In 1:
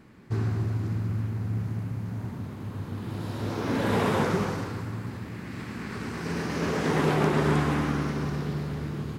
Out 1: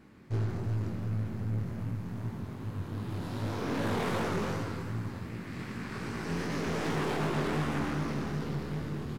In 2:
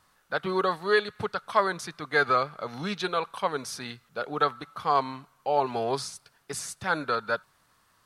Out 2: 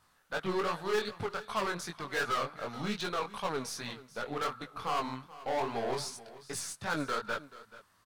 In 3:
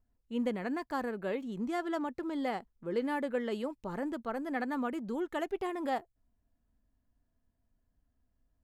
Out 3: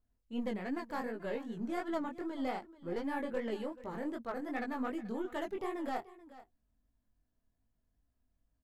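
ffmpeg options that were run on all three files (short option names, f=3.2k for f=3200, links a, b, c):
-filter_complex "[0:a]aeval=exprs='0.335*(cos(1*acos(clip(val(0)/0.335,-1,1)))-cos(1*PI/2))+0.0422*(cos(6*acos(clip(val(0)/0.335,-1,1)))-cos(6*PI/2))':c=same,asoftclip=type=hard:threshold=-24.5dB,flanger=delay=17.5:depth=6.4:speed=2.6,asplit=2[a][b];[b]aecho=0:1:433:0.133[c];[a][c]amix=inputs=2:normalize=0"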